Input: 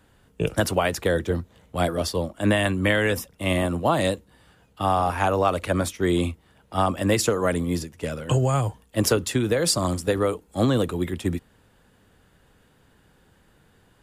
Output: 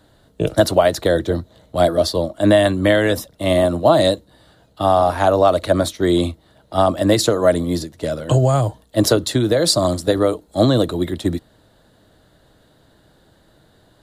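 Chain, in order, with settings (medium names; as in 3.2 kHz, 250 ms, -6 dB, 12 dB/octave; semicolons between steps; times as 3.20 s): graphic EQ with 31 bands 125 Hz +4 dB, 315 Hz +7 dB, 630 Hz +11 dB, 2.5 kHz -8 dB, 4 kHz +12 dB; trim +2.5 dB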